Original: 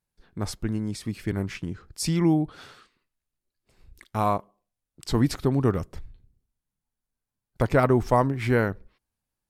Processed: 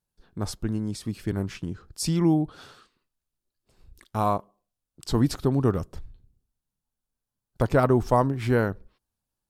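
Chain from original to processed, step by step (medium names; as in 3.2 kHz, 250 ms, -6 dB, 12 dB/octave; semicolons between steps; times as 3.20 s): peaking EQ 2.1 kHz -7 dB 0.55 oct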